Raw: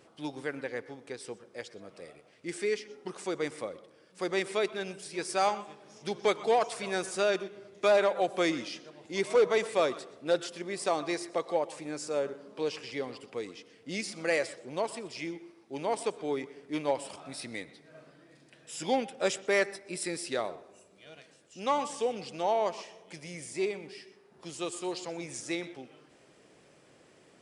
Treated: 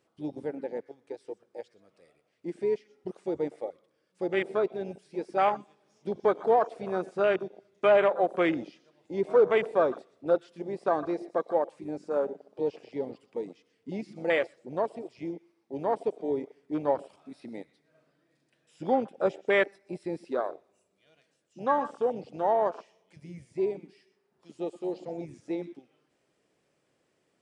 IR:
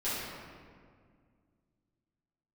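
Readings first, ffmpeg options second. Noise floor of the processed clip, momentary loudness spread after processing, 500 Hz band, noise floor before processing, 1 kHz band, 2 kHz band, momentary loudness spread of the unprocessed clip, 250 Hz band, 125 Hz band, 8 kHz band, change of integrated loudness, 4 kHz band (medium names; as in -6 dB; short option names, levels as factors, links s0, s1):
-74 dBFS, 17 LU, +3.0 dB, -61 dBFS, +2.5 dB, -0.5 dB, 16 LU, +2.5 dB, +2.0 dB, under -20 dB, +2.5 dB, -8.5 dB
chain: -filter_complex "[0:a]acrossover=split=4100[s0][s1];[s1]acompressor=threshold=0.002:ratio=4:attack=1:release=60[s2];[s0][s2]amix=inputs=2:normalize=0,afwtdn=0.0224,volume=1.41"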